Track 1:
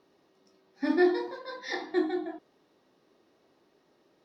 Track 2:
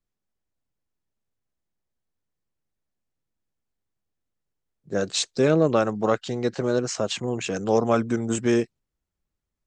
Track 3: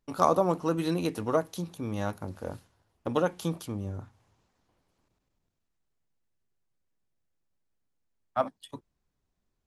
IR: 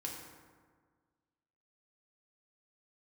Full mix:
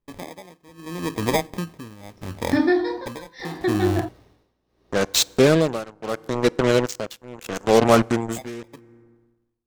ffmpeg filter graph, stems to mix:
-filter_complex "[0:a]acompressor=threshold=-29dB:ratio=6,aeval=exprs='val(0)+0.000398*(sin(2*PI*60*n/s)+sin(2*PI*2*60*n/s)/2+sin(2*PI*3*60*n/s)/3+sin(2*PI*4*60*n/s)/4+sin(2*PI*5*60*n/s)/5)':channel_layout=same,adelay=1700,volume=-0.5dB[link_01];[1:a]acrusher=bits=3:mix=0:aa=0.5,volume=-3.5dB,asplit=2[link_02][link_03];[link_03]volume=-21dB[link_04];[2:a]highshelf=frequency=4900:gain=-7,acrusher=samples=31:mix=1:aa=0.000001,acompressor=threshold=-34dB:ratio=3,volume=-0.5dB,asplit=2[link_05][link_06];[link_06]volume=-23.5dB[link_07];[3:a]atrim=start_sample=2205[link_08];[link_04][link_07]amix=inputs=2:normalize=0[link_09];[link_09][link_08]afir=irnorm=-1:irlink=0[link_10];[link_01][link_02][link_05][link_10]amix=inputs=4:normalize=0,dynaudnorm=framelen=150:gausssize=11:maxgain=14dB,tremolo=f=0.76:d=0.91"

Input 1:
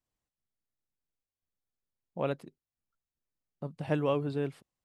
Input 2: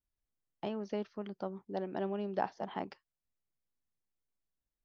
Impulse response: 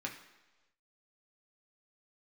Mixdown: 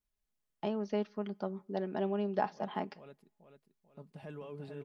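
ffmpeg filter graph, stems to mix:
-filter_complex "[0:a]alimiter=level_in=2dB:limit=-24dB:level=0:latency=1:release=15,volume=-2dB,adelay=350,volume=-12dB,asplit=3[link_01][link_02][link_03];[link_02]volume=-23.5dB[link_04];[link_03]volume=-5.5dB[link_05];[1:a]volume=0dB,asplit=3[link_06][link_07][link_08];[link_07]volume=-21dB[link_09];[link_08]apad=whole_len=229123[link_10];[link_01][link_10]sidechaincompress=threshold=-40dB:ratio=8:attack=16:release=1340[link_11];[2:a]atrim=start_sample=2205[link_12];[link_04][link_09]amix=inputs=2:normalize=0[link_13];[link_13][link_12]afir=irnorm=-1:irlink=0[link_14];[link_05]aecho=0:1:441|882|1323|1764|2205|2646:1|0.44|0.194|0.0852|0.0375|0.0165[link_15];[link_11][link_06][link_14][link_15]amix=inputs=4:normalize=0,aecho=1:1:4.8:0.47"

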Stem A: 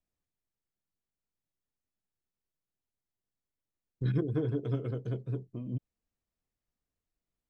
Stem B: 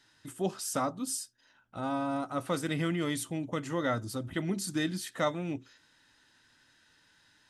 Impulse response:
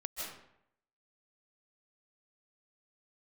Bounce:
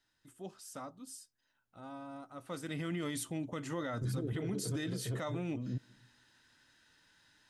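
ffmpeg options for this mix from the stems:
-filter_complex "[0:a]volume=-1dB,asplit=2[link_01][link_02];[link_02]volume=-22dB[link_03];[1:a]volume=-2.5dB,afade=type=in:start_time=2.4:duration=0.7:silence=0.251189,asplit=2[link_04][link_05];[link_05]apad=whole_len=330319[link_06];[link_01][link_06]sidechaincompress=threshold=-41dB:ratio=8:attack=48:release=109[link_07];[2:a]atrim=start_sample=2205[link_08];[link_03][link_08]afir=irnorm=-1:irlink=0[link_09];[link_07][link_04][link_09]amix=inputs=3:normalize=0,alimiter=level_in=5dB:limit=-24dB:level=0:latency=1:release=33,volume=-5dB"

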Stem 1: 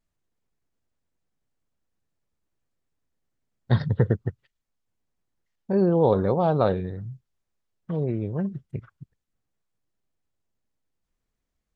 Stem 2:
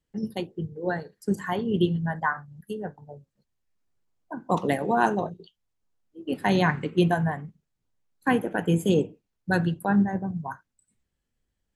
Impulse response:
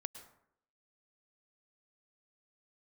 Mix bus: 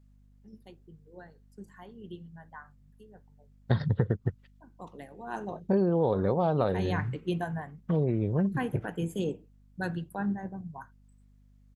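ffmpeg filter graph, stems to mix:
-filter_complex "[0:a]volume=2.5dB[link_01];[1:a]adelay=300,volume=-9.5dB,afade=type=in:start_time=5.23:duration=0.29:silence=0.266073[link_02];[link_01][link_02]amix=inputs=2:normalize=0,aeval=exprs='val(0)+0.00126*(sin(2*PI*50*n/s)+sin(2*PI*2*50*n/s)/2+sin(2*PI*3*50*n/s)/3+sin(2*PI*4*50*n/s)/4+sin(2*PI*5*50*n/s)/5)':channel_layout=same,acompressor=threshold=-22dB:ratio=6"

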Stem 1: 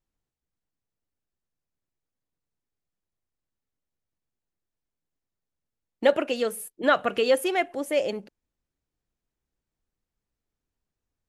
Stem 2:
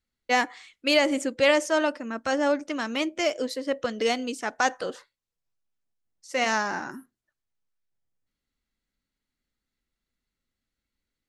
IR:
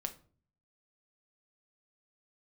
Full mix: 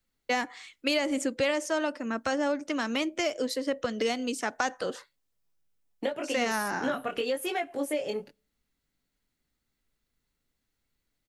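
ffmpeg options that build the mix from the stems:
-filter_complex "[0:a]aecho=1:1:7:0.36,acompressor=threshold=-23dB:ratio=6,flanger=delay=17:depth=6.9:speed=0.93,volume=1dB,asplit=2[link_01][link_02];[link_02]volume=-18dB[link_03];[1:a]volume=2dB[link_04];[2:a]atrim=start_sample=2205[link_05];[link_03][link_05]afir=irnorm=-1:irlink=0[link_06];[link_01][link_04][link_06]amix=inputs=3:normalize=0,highshelf=frequency=11000:gain=5.5,acrossover=split=190[link_07][link_08];[link_08]acompressor=threshold=-27dB:ratio=3[link_09];[link_07][link_09]amix=inputs=2:normalize=0"

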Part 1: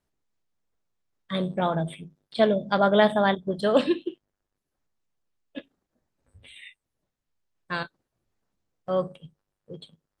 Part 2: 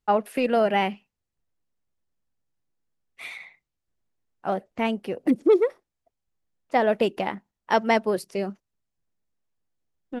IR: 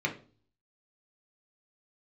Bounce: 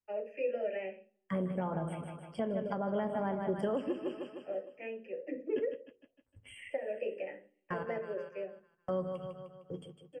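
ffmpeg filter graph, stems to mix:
-filter_complex "[0:a]bandreject=frequency=690:width=22,agate=range=-16dB:threshold=-50dB:ratio=16:detection=peak,volume=-1dB,asplit=4[link_01][link_02][link_03][link_04];[link_02]volume=-18dB[link_05];[link_03]volume=-10.5dB[link_06];[1:a]asplit=3[link_07][link_08][link_09];[link_07]bandpass=frequency=530:width_type=q:width=8,volume=0dB[link_10];[link_08]bandpass=frequency=1840:width_type=q:width=8,volume=-6dB[link_11];[link_09]bandpass=frequency=2480:width_type=q:width=8,volume=-9dB[link_12];[link_10][link_11][link_12]amix=inputs=3:normalize=0,volume=0dB,asplit=2[link_13][link_14];[link_14]volume=-10.5dB[link_15];[link_04]apad=whole_len=449850[link_16];[link_13][link_16]sidechaingate=range=-33dB:threshold=-54dB:ratio=16:detection=peak[link_17];[2:a]atrim=start_sample=2205[link_18];[link_05][link_15]amix=inputs=2:normalize=0[link_19];[link_19][link_18]afir=irnorm=-1:irlink=0[link_20];[link_06]aecho=0:1:153|306|459|612|765|918|1071:1|0.48|0.23|0.111|0.0531|0.0255|0.0122[link_21];[link_01][link_17][link_20][link_21]amix=inputs=4:normalize=0,acrossover=split=340|1100[link_22][link_23][link_24];[link_22]acompressor=threshold=-29dB:ratio=4[link_25];[link_23]acompressor=threshold=-29dB:ratio=4[link_26];[link_24]acompressor=threshold=-46dB:ratio=4[link_27];[link_25][link_26][link_27]amix=inputs=3:normalize=0,asuperstop=centerf=3900:order=12:qfactor=2.6,alimiter=limit=-24dB:level=0:latency=1:release=479"

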